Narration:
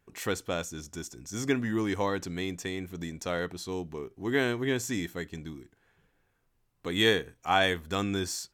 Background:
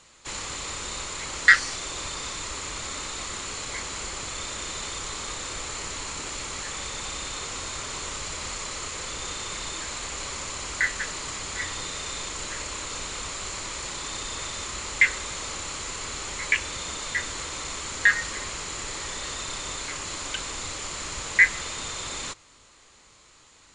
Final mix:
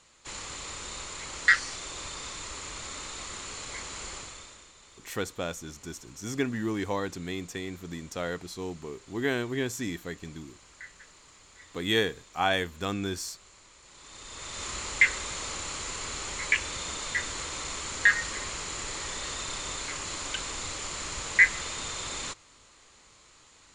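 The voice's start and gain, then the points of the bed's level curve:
4.90 s, -1.5 dB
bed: 4.15 s -5.5 dB
4.73 s -21.5 dB
13.82 s -21.5 dB
14.67 s -2 dB

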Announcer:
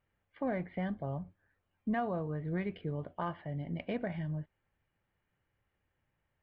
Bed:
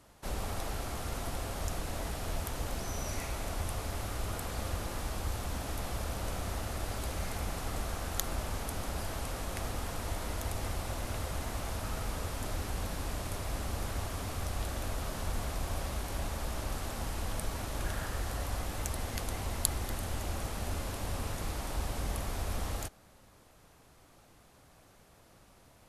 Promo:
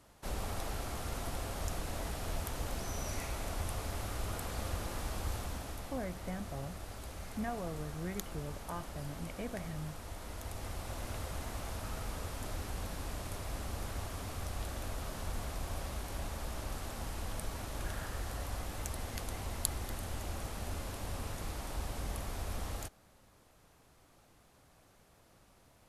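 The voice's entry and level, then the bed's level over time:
5.50 s, -5.5 dB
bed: 5.35 s -2 dB
5.99 s -9 dB
10.1 s -9 dB
11.04 s -4 dB

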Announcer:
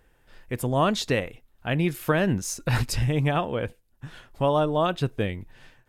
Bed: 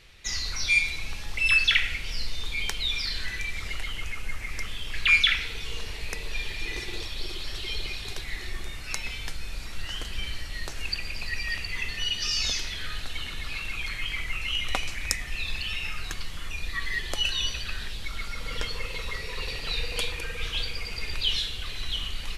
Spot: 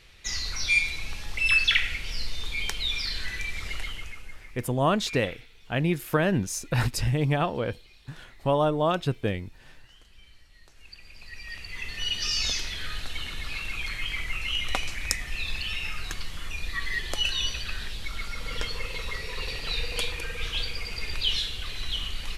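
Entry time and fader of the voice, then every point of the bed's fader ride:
4.05 s, -1.0 dB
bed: 3.84 s -0.5 dB
4.81 s -21 dB
10.65 s -21 dB
12.13 s 0 dB

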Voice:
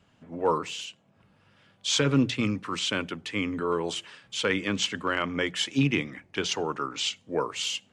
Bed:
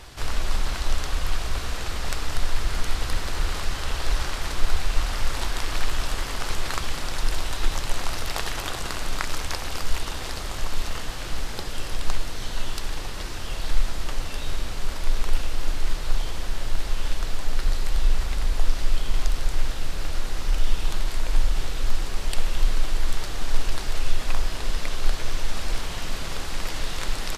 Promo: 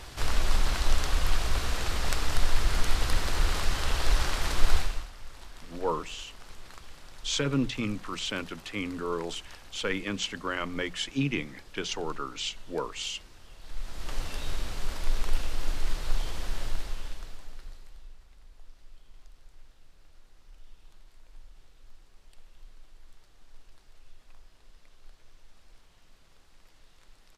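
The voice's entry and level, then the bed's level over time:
5.40 s, -4.5 dB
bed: 4.78 s -0.5 dB
5.12 s -20 dB
13.59 s -20 dB
14.16 s -4.5 dB
16.64 s -4.5 dB
18.18 s -30 dB

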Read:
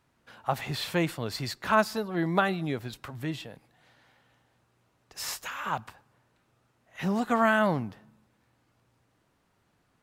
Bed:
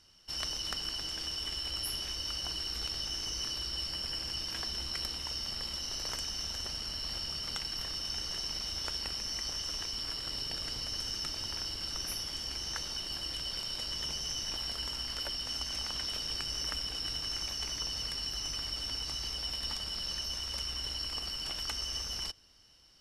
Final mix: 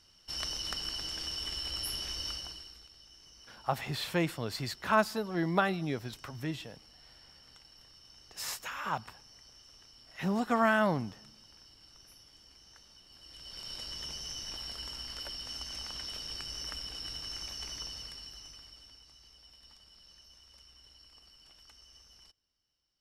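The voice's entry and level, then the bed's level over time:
3.20 s, -3.0 dB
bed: 2.29 s -0.5 dB
2.88 s -20 dB
13.08 s -20 dB
13.7 s -4.5 dB
17.8 s -4.5 dB
19.09 s -21 dB

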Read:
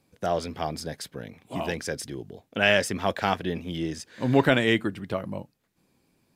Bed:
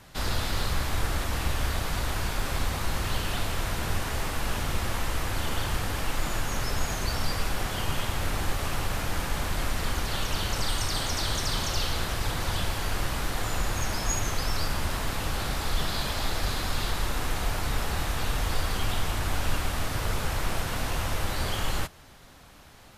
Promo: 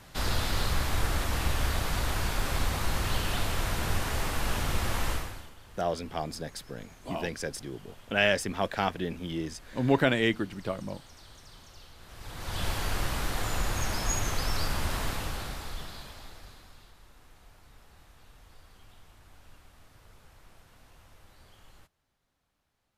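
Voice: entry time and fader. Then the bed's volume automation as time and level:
5.55 s, -3.5 dB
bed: 5.12 s -0.5 dB
5.55 s -23.5 dB
11.97 s -23.5 dB
12.67 s -1.5 dB
15.06 s -1.5 dB
16.94 s -27.5 dB

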